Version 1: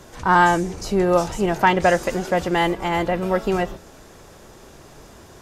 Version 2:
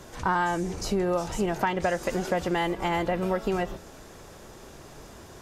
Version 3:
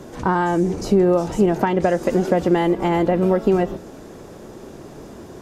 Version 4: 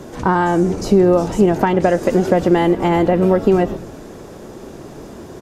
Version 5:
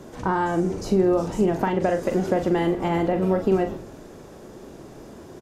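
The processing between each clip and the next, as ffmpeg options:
-af "acompressor=threshold=-21dB:ratio=6,volume=-1.5dB"
-af "equalizer=f=280:w=0.47:g=12.5"
-filter_complex "[0:a]asplit=6[a][b][c][d][e][f];[b]adelay=102,afreqshift=-85,volume=-20dB[g];[c]adelay=204,afreqshift=-170,volume=-24.4dB[h];[d]adelay=306,afreqshift=-255,volume=-28.9dB[i];[e]adelay=408,afreqshift=-340,volume=-33.3dB[j];[f]adelay=510,afreqshift=-425,volume=-37.7dB[k];[a][g][h][i][j][k]amix=inputs=6:normalize=0,volume=3.5dB"
-filter_complex "[0:a]asplit=2[a][b];[b]adelay=42,volume=-8dB[c];[a][c]amix=inputs=2:normalize=0,volume=-8dB"

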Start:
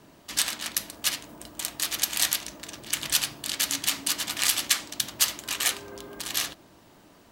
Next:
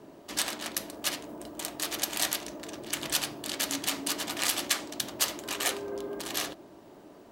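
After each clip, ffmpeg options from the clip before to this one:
-af "equalizer=f=440:w=0.62:g=14,bandreject=f=490:w=12,volume=-5.5dB"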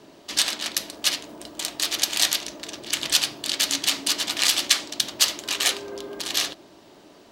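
-af "equalizer=f=4.2k:w=0.55:g=11.5"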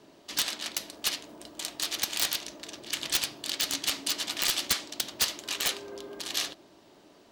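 -af "aeval=exprs='(mod(2.51*val(0)+1,2)-1)/2.51':c=same,volume=-6.5dB"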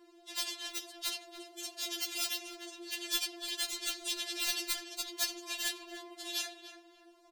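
-filter_complex "[0:a]asplit=2[a][b];[b]adelay=291,lowpass=f=1.7k:p=1,volume=-8dB,asplit=2[c][d];[d]adelay=291,lowpass=f=1.7k:p=1,volume=0.39,asplit=2[e][f];[f]adelay=291,lowpass=f=1.7k:p=1,volume=0.39,asplit=2[g][h];[h]adelay=291,lowpass=f=1.7k:p=1,volume=0.39[i];[a][c][e][g][i]amix=inputs=5:normalize=0,afftfilt=real='re*4*eq(mod(b,16),0)':imag='im*4*eq(mod(b,16),0)':win_size=2048:overlap=0.75,volume=-4dB"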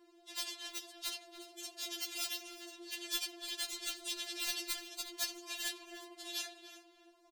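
-af "aecho=1:1:360:0.112,volume=-4dB"

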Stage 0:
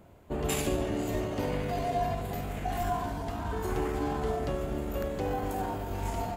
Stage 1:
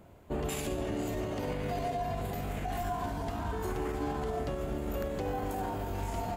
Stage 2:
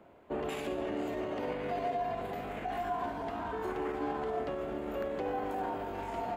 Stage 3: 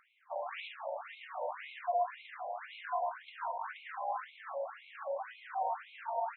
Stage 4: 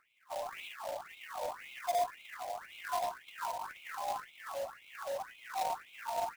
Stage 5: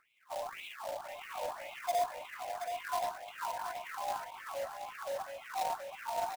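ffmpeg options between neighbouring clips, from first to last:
-af "alimiter=level_in=1dB:limit=-24dB:level=0:latency=1:release=95,volume=-1dB"
-filter_complex "[0:a]acrossover=split=230 3400:gain=0.178 1 0.178[a][b][c];[a][b][c]amix=inputs=3:normalize=0,volume=1dB"
-af "afftfilt=real='re*between(b*sr/1024,690*pow(3000/690,0.5+0.5*sin(2*PI*1.9*pts/sr))/1.41,690*pow(3000/690,0.5+0.5*sin(2*PI*1.9*pts/sr))*1.41)':imag='im*between(b*sr/1024,690*pow(3000/690,0.5+0.5*sin(2*PI*1.9*pts/sr))/1.41,690*pow(3000/690,0.5+0.5*sin(2*PI*1.9*pts/sr))*1.41)':win_size=1024:overlap=0.75,volume=3.5dB"
-filter_complex "[0:a]acrusher=bits=2:mode=log:mix=0:aa=0.000001,acrossover=split=760[a][b];[a]aeval=exprs='val(0)*(1-0.5/2+0.5/2*cos(2*PI*1.9*n/s))':c=same[c];[b]aeval=exprs='val(0)*(1-0.5/2-0.5/2*cos(2*PI*1.9*n/s))':c=same[d];[c][d]amix=inputs=2:normalize=0,volume=1.5dB"
-af "aecho=1:1:727:0.422"

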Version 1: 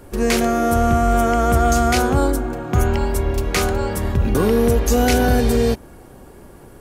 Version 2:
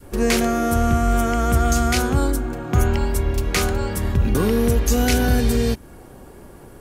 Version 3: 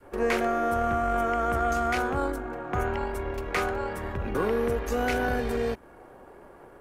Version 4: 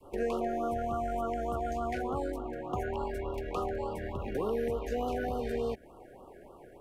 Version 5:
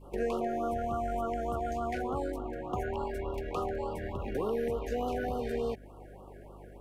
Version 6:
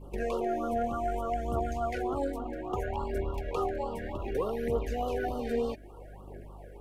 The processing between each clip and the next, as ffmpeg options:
-af "adynamicequalizer=threshold=0.0282:dfrequency=640:dqfactor=0.72:tfrequency=640:tqfactor=0.72:attack=5:release=100:ratio=0.375:range=3.5:mode=cutabove:tftype=bell"
-filter_complex "[0:a]aeval=exprs='if(lt(val(0),0),0.708*val(0),val(0))':c=same,acrossover=split=380 2300:gain=0.2 1 0.141[a][b][c];[a][b][c]amix=inputs=3:normalize=0"
-filter_complex "[0:a]acrossover=split=360|1600|4500[a][b][c][d];[a]acompressor=threshold=-34dB:ratio=4[e];[b]acompressor=threshold=-29dB:ratio=4[f];[c]acompressor=threshold=-47dB:ratio=4[g];[d]acompressor=threshold=-59dB:ratio=4[h];[e][f][g][h]amix=inputs=4:normalize=0,afftfilt=real='re*(1-between(b*sr/1024,990*pow(2000/990,0.5+0.5*sin(2*PI*3.4*pts/sr))/1.41,990*pow(2000/990,0.5+0.5*sin(2*PI*3.4*pts/sr))*1.41))':imag='im*(1-between(b*sr/1024,990*pow(2000/990,0.5+0.5*sin(2*PI*3.4*pts/sr))/1.41,990*pow(2000/990,0.5+0.5*sin(2*PI*3.4*pts/sr))*1.41))':win_size=1024:overlap=0.75,volume=-2dB"
-af "aeval=exprs='val(0)+0.00282*(sin(2*PI*50*n/s)+sin(2*PI*2*50*n/s)/2+sin(2*PI*3*50*n/s)/3+sin(2*PI*4*50*n/s)/4+sin(2*PI*5*50*n/s)/5)':c=same"
-af "aphaser=in_gain=1:out_gain=1:delay=4.4:decay=0.49:speed=0.63:type=triangular"

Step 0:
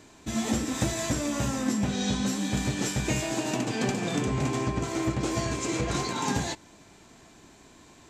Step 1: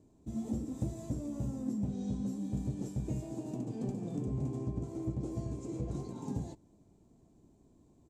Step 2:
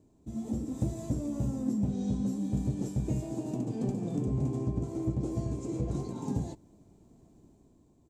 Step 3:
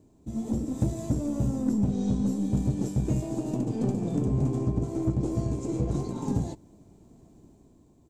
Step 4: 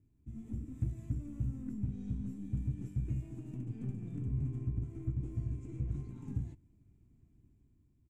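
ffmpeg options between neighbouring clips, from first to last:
-af "firequalizer=gain_entry='entry(120,0);entry(1600,-28);entry(8500,-15)':delay=0.05:min_phase=1,volume=-5.5dB"
-af "dynaudnorm=f=110:g=11:m=5dB"
-af "aeval=exprs='0.141*(cos(1*acos(clip(val(0)/0.141,-1,1)))-cos(1*PI/2))+0.00398*(cos(8*acos(clip(val(0)/0.141,-1,1)))-cos(8*PI/2))':c=same,volume=4.5dB"
-af "firequalizer=gain_entry='entry(110,0);entry(180,-10);entry(270,-10);entry(540,-24);entry(890,-21);entry(1300,-12);entry(2300,-5);entry(4200,-23);entry(10000,-14)':delay=0.05:min_phase=1,volume=-5.5dB"

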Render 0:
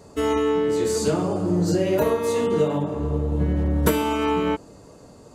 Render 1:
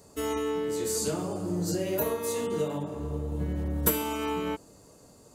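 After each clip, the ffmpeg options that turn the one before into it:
-af "aemphasis=mode=production:type=50fm,volume=-8.5dB"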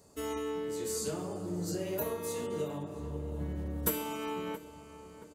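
-filter_complex "[0:a]asplit=2[a][b];[b]adelay=675,lowpass=f=2.6k:p=1,volume=-14dB,asplit=2[c][d];[d]adelay=675,lowpass=f=2.6k:p=1,volume=0.54,asplit=2[e][f];[f]adelay=675,lowpass=f=2.6k:p=1,volume=0.54,asplit=2[g][h];[h]adelay=675,lowpass=f=2.6k:p=1,volume=0.54,asplit=2[i][j];[j]adelay=675,lowpass=f=2.6k:p=1,volume=0.54[k];[a][c][e][g][i][k]amix=inputs=6:normalize=0,volume=-6dB"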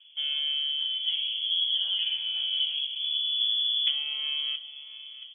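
-filter_complex "[0:a]acrossover=split=2700[a][b];[b]acompressor=threshold=-50dB:ratio=4:attack=1:release=60[c];[a][c]amix=inputs=2:normalize=0,tiltshelf=f=970:g=10,lowpass=f=3k:t=q:w=0.5098,lowpass=f=3k:t=q:w=0.6013,lowpass=f=3k:t=q:w=0.9,lowpass=f=3k:t=q:w=2.563,afreqshift=-3500"

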